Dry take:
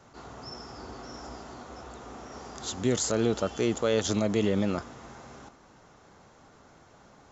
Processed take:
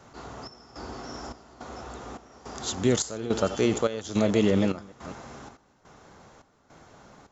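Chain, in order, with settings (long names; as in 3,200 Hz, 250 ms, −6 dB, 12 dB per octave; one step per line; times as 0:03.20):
delay that plays each chunk backwards 205 ms, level −12 dB
gate pattern "xxxxx...x" 159 BPM −12 dB
level +3.5 dB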